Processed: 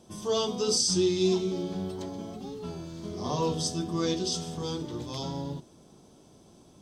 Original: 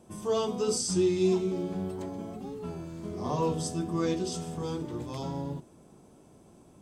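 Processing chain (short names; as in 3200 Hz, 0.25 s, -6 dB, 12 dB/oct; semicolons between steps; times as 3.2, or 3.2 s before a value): band shelf 4400 Hz +9 dB 1.2 oct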